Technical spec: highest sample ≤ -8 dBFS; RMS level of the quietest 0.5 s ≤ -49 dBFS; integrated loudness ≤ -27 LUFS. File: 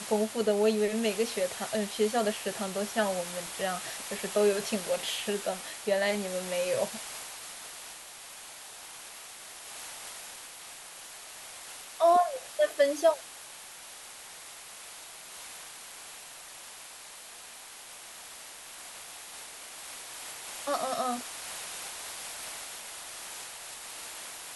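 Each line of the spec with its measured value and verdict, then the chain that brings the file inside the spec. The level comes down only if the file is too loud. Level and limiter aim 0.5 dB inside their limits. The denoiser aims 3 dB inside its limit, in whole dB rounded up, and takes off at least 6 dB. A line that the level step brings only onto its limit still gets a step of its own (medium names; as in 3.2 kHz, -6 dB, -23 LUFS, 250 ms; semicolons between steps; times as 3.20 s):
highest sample -13.0 dBFS: pass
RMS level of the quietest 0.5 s -47 dBFS: fail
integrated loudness -32.0 LUFS: pass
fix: noise reduction 6 dB, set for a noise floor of -47 dBFS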